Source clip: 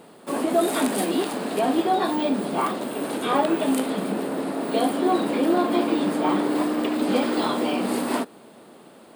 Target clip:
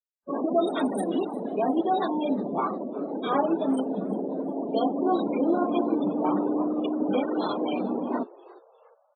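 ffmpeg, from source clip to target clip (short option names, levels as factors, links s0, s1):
-filter_complex "[0:a]bandreject=f=119.3:t=h:w=4,bandreject=f=238.6:t=h:w=4,bandreject=f=357.9:t=h:w=4,bandreject=f=477.2:t=h:w=4,bandreject=f=596.5:t=h:w=4,bandreject=f=715.8:t=h:w=4,bandreject=f=835.1:t=h:w=4,bandreject=f=954.4:t=h:w=4,bandreject=f=1073.7:t=h:w=4,bandreject=f=1193:t=h:w=4,bandreject=f=1312.3:t=h:w=4,bandreject=f=1431.6:t=h:w=4,bandreject=f=1550.9:t=h:w=4,bandreject=f=1670.2:t=h:w=4,bandreject=f=1789.5:t=h:w=4,bandreject=f=1908.8:t=h:w=4,bandreject=f=2028.1:t=h:w=4,afftfilt=real='re*gte(hypot(re,im),0.0708)':imag='im*gte(hypot(re,im),0.0708)':win_size=1024:overlap=0.75,adynamicequalizer=threshold=0.00708:dfrequency=1200:dqfactor=3.2:tfrequency=1200:tqfactor=3.2:attack=5:release=100:ratio=0.375:range=1.5:mode=cutabove:tftype=bell,asplit=4[s0][s1][s2][s3];[s1]adelay=355,afreqshift=110,volume=0.0841[s4];[s2]adelay=710,afreqshift=220,volume=0.0335[s5];[s3]adelay=1065,afreqshift=330,volume=0.0135[s6];[s0][s4][s5][s6]amix=inputs=4:normalize=0,volume=0.75" -ar 32000 -c:a wmav2 -b:a 128k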